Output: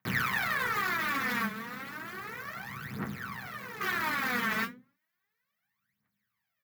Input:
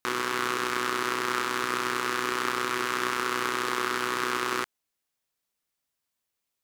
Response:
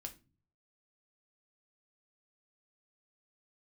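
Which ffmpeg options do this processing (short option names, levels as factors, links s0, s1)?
-filter_complex "[0:a]aeval=exprs='(mod(13.3*val(0)+1,2)-1)/13.3':c=same,asettb=1/sr,asplit=3[s0][s1][s2];[s0]atrim=end=1.444[s3];[s1]atrim=start=1.44:end=3.81,asetpts=PTS-STARTPTS,afade=t=in:d=0.004:c=qsin,afade=t=out:st=2.366:d=0.004:c=qsin,acrossover=split=750|5100[s4][s5][s6];[s4]acompressor=threshold=0.00501:ratio=4[s7];[s5]acompressor=threshold=0.00316:ratio=4[s8];[s6]acompressor=threshold=0.00447:ratio=4[s9];[s7][s8][s9]amix=inputs=3:normalize=0[s10];[s2]atrim=start=3.806[s11];[s3][s10]acrossfade=d=0.004:c1=hsin:c2=qsin[s12];[s12][s11]acrossfade=d=0.004:c1=qsin:c2=hsin,firequalizer=gain_entry='entry(210,0);entry(310,-16);entry(1800,1);entry(2700,-12);entry(8500,-26);entry(13000,-13)':delay=0.05:min_phase=1[s13];[1:a]atrim=start_sample=2205,asetrate=66150,aresample=44100[s14];[s13][s14]afir=irnorm=-1:irlink=0,acontrast=84,highpass=f=130:w=0.5412,highpass=f=130:w=1.3066,alimiter=level_in=2.99:limit=0.0631:level=0:latency=1:release=12,volume=0.335,aphaser=in_gain=1:out_gain=1:delay=4.7:decay=0.78:speed=0.33:type=triangular,volume=2.66"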